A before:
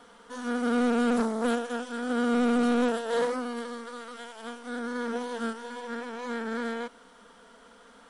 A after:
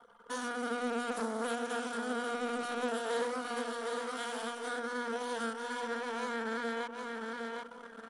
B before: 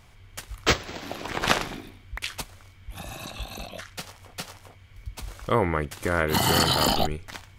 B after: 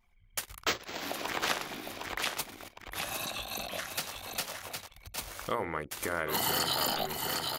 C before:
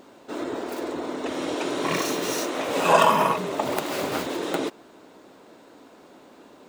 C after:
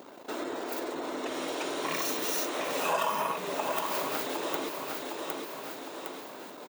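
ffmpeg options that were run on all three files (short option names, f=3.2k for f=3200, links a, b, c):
-filter_complex "[0:a]bandreject=f=8k:w=25,asplit=2[a][b];[b]aecho=0:1:759|1518|2277|3036:0.335|0.114|0.0387|0.0132[c];[a][c]amix=inputs=2:normalize=0,acompressor=threshold=-40dB:ratio=2.5,aemphasis=mode=production:type=bsi,bandreject=f=60:t=h:w=6,bandreject=f=120:t=h:w=6,bandreject=f=180:t=h:w=6,bandreject=f=240:t=h:w=6,bandreject=f=300:t=h:w=6,bandreject=f=360:t=h:w=6,bandreject=f=420:t=h:w=6,bandreject=f=480:t=h:w=6,bandreject=f=540:t=h:w=6,anlmdn=0.01,asoftclip=type=tanh:threshold=-16dB,highshelf=f=5.2k:g=-9.5,volume=6dB"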